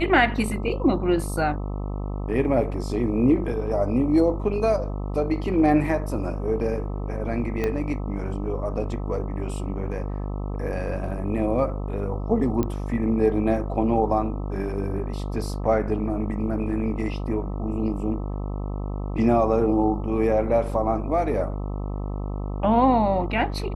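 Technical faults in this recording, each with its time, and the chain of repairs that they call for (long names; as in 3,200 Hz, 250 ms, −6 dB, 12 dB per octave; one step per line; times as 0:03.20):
mains buzz 50 Hz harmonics 26 −29 dBFS
0:07.64: click −13 dBFS
0:12.63: click −13 dBFS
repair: click removal
hum removal 50 Hz, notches 26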